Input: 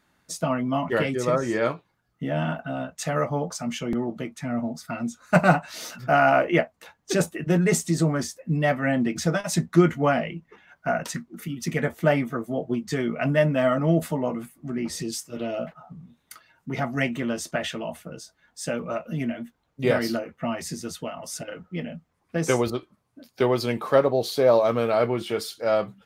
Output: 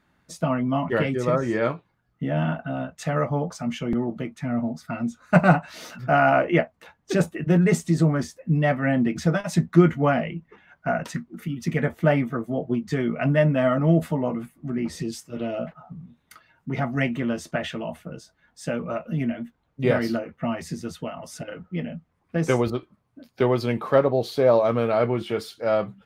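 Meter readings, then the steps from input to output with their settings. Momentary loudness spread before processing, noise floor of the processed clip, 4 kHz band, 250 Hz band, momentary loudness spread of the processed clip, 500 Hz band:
14 LU, -70 dBFS, -3.5 dB, +2.0 dB, 14 LU, 0.0 dB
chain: tone controls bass +4 dB, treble -8 dB

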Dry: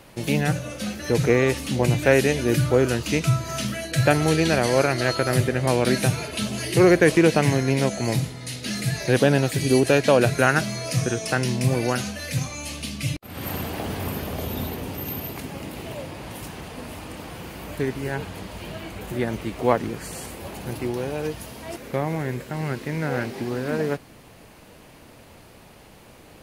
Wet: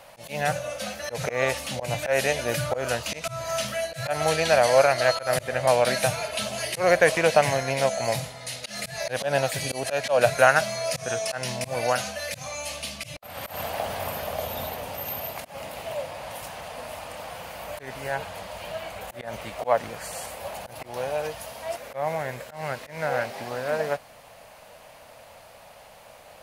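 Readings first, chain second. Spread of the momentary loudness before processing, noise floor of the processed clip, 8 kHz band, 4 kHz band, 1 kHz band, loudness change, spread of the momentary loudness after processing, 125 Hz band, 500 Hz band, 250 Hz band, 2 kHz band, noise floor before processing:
17 LU, -49 dBFS, -1.0 dB, -1.0 dB, +2.0 dB, -3.5 dB, 17 LU, -12.0 dB, -1.5 dB, -14.5 dB, -1.0 dB, -48 dBFS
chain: auto swell 0.139 s; resonant low shelf 460 Hz -9 dB, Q 3

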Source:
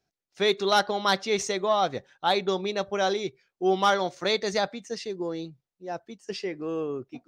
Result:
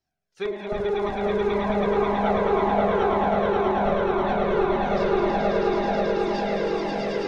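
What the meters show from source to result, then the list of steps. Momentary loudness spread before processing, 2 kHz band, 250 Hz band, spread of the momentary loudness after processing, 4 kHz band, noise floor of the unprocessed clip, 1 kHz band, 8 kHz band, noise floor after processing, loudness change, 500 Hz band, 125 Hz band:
14 LU, +0.5 dB, +7.0 dB, 5 LU, -8.0 dB, under -85 dBFS, +3.5 dB, under -10 dB, -57 dBFS, +3.5 dB, +5.5 dB, +8.5 dB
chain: spring tank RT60 1.6 s, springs 44 ms, chirp 80 ms, DRR -2 dB; wrapped overs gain 12 dB; treble ducked by the level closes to 610 Hz, closed at -17 dBFS; on a send: swelling echo 0.108 s, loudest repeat 8, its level -3 dB; on the sum: cascading flanger falling 1.9 Hz

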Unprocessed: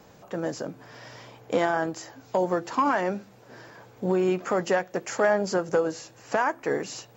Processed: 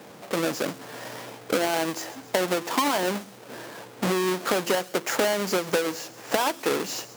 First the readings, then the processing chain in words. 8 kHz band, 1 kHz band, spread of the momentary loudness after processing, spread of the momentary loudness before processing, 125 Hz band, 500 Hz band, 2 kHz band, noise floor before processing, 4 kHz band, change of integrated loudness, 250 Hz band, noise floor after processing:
+8.5 dB, -0.5 dB, 14 LU, 16 LU, -1.0 dB, -0.5 dB, +1.5 dB, -53 dBFS, +11.0 dB, +0.5 dB, +0.5 dB, -46 dBFS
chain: half-waves squared off; HPF 200 Hz 12 dB/oct; compressor 6:1, threshold -24 dBFS, peak gain reduction 10.5 dB; thin delay 0.134 s, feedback 45%, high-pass 4200 Hz, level -14.5 dB; gain +3.5 dB

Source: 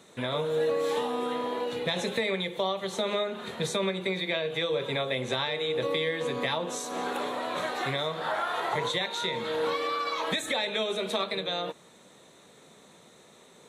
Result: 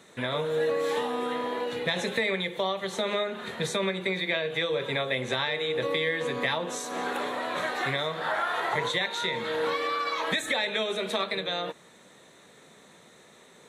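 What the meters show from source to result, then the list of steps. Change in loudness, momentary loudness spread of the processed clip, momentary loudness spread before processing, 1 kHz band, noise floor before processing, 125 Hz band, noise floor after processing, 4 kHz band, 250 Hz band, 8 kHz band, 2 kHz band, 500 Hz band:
+1.0 dB, 4 LU, 4 LU, +1.0 dB, -56 dBFS, 0.0 dB, -55 dBFS, +0.5 dB, 0.0 dB, 0.0 dB, +4.0 dB, 0.0 dB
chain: bell 1800 Hz +5.5 dB 0.64 oct

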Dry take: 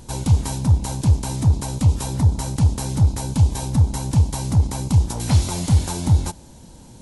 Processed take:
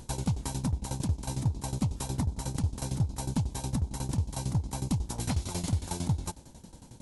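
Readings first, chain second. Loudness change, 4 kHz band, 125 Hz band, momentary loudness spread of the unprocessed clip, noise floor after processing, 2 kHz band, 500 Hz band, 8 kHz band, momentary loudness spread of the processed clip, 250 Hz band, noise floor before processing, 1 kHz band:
-12.5 dB, -9.0 dB, -13.0 dB, 1 LU, -52 dBFS, -8.5 dB, -9.0 dB, -9.0 dB, 1 LU, -9.0 dB, -44 dBFS, -9.0 dB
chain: compressor 6:1, threshold -20 dBFS, peak gain reduction 10 dB; tremolo saw down 11 Hz, depth 85%; gain -2.5 dB

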